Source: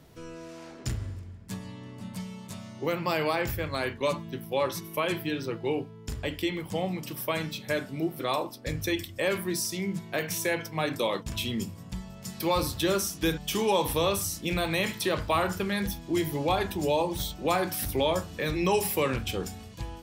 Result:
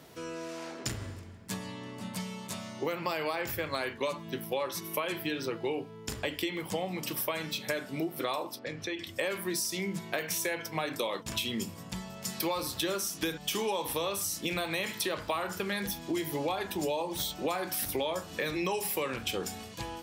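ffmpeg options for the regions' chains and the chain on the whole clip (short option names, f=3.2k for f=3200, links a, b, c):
-filter_complex "[0:a]asettb=1/sr,asplit=3[a][b][c];[a]atrim=end=8.594[d];[b]atrim=start=8.59:end=9.07,asetpts=PTS-STARTPTS,afade=t=in:d=0.004:c=qsin,afade=t=out:st=0.476:d=0.004:c=qsin,highpass=120,lowpass=3.8k,acompressor=threshold=-39dB:ratio=2.5:attack=3.2:release=140:knee=1:detection=peak[e];[c]atrim=start=9.066[f];[d][e]acrossfade=d=0.004:c1=hsin:c2=qsin[g];[g][f]acrossfade=d=0.004:c1=qsin:c2=hsin,highpass=f=340:p=1,acompressor=threshold=-35dB:ratio=6,volume=5.5dB"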